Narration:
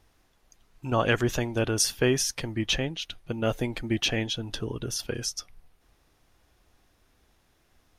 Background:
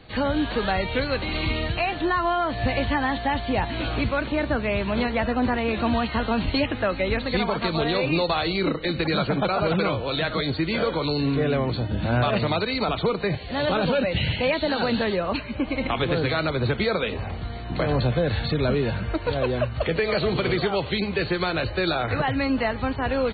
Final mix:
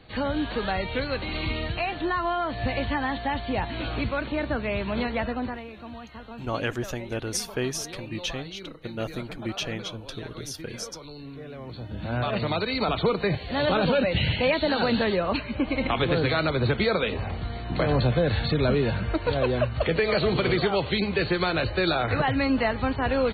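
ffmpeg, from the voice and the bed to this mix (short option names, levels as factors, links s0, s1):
-filter_complex "[0:a]adelay=5550,volume=0.562[s0];[1:a]volume=5.01,afade=t=out:st=5.2:d=0.49:silence=0.199526,afade=t=in:st=11.55:d=1.46:silence=0.133352[s1];[s0][s1]amix=inputs=2:normalize=0"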